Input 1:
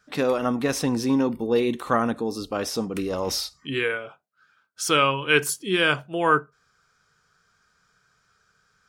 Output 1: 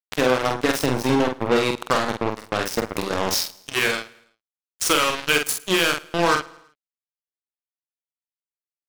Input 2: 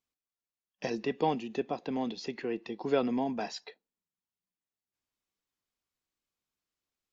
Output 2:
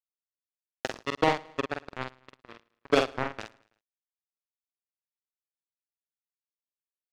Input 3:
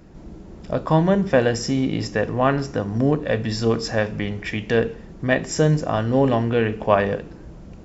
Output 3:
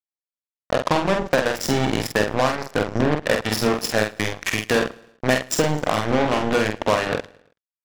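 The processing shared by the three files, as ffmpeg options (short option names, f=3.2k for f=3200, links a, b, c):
-filter_complex "[0:a]highpass=f=260:p=1,acompressor=threshold=-22dB:ratio=8,acrusher=bits=3:mix=0:aa=0.5,asplit=2[a][b];[b]adelay=47,volume=-5dB[c];[a][c]amix=inputs=2:normalize=0,asplit=2[d][e];[e]aecho=0:1:109|218|327:0.0708|0.0333|0.0156[f];[d][f]amix=inputs=2:normalize=0,volume=6dB"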